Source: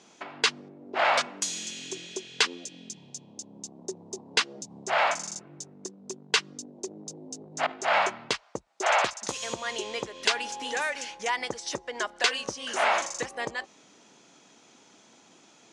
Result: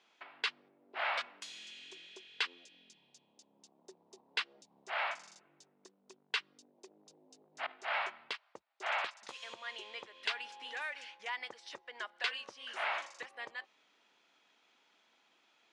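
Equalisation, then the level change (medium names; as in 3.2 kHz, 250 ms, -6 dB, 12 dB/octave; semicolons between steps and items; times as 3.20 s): distance through air 450 m; differentiator; +6.5 dB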